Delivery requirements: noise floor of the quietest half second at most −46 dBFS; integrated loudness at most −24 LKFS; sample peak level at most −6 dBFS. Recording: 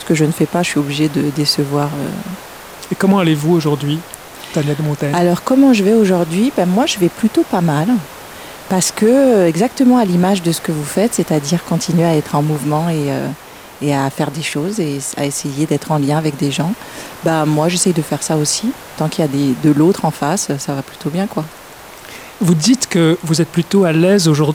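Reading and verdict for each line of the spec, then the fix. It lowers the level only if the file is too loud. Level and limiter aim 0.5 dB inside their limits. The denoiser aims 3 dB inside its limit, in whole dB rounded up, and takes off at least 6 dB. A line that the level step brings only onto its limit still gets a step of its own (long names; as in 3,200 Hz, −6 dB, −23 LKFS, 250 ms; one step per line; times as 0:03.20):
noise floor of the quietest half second −36 dBFS: out of spec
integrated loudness −15.0 LKFS: out of spec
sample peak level −2.0 dBFS: out of spec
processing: broadband denoise 6 dB, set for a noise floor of −36 dBFS
level −9.5 dB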